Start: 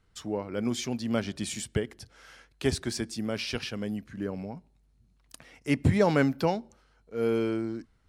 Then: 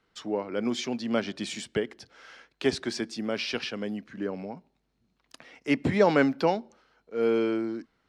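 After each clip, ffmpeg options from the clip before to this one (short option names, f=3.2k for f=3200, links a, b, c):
-filter_complex "[0:a]acrossover=split=190 6100:gain=0.126 1 0.141[a][b][c];[a][b][c]amix=inputs=3:normalize=0,volume=3dB"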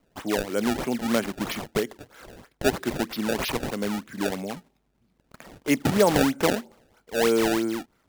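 -filter_complex "[0:a]asplit=2[a][b];[b]alimiter=limit=-21dB:level=0:latency=1:release=310,volume=-2.5dB[c];[a][c]amix=inputs=2:normalize=0,acrusher=samples=24:mix=1:aa=0.000001:lfo=1:lforange=38.4:lforate=3.1"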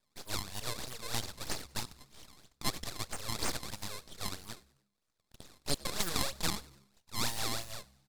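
-filter_complex "[0:a]asuperpass=centerf=4100:order=12:qfactor=0.5,aeval=exprs='abs(val(0))':c=same,asplit=4[a][b][c][d];[b]adelay=97,afreqshift=67,volume=-22dB[e];[c]adelay=194,afreqshift=134,volume=-28.6dB[f];[d]adelay=291,afreqshift=201,volume=-35.1dB[g];[a][e][f][g]amix=inputs=4:normalize=0"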